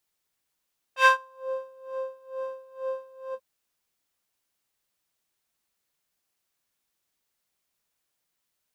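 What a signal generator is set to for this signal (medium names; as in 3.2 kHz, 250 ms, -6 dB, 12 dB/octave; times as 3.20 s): synth patch with tremolo C6, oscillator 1 triangle, oscillator 2 square, interval -12 st, detune 12 cents, oscillator 2 level -2.5 dB, noise -12 dB, filter bandpass, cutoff 160 Hz, Q 1.8, filter envelope 4 oct, filter decay 0.50 s, attack 93 ms, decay 0.12 s, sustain -22 dB, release 0.06 s, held 2.38 s, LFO 2.2 Hz, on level 21.5 dB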